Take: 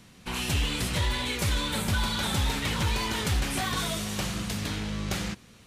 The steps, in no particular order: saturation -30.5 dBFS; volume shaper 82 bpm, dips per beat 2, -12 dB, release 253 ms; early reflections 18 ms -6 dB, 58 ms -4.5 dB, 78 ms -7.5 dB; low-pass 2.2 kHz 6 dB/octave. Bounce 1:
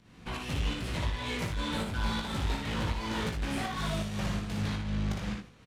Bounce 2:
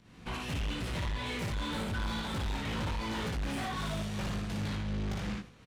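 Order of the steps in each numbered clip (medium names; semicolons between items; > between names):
low-pass > saturation > volume shaper > early reflections; volume shaper > early reflections > saturation > low-pass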